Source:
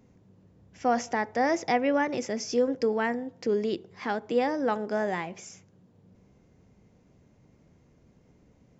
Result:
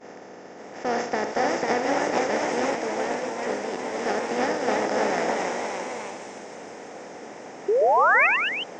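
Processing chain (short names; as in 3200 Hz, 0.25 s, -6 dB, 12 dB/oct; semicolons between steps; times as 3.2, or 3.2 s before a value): per-bin compression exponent 0.2; expander -14 dBFS; thin delay 0.183 s, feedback 79%, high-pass 3600 Hz, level -7 dB; 7.68–8.27 painted sound rise 380–2700 Hz -15 dBFS; echoes that change speed 0.561 s, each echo +1 st, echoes 3; 2.75–3.94 resonator 64 Hz, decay 0.17 s, harmonics all, mix 60%; gain -5 dB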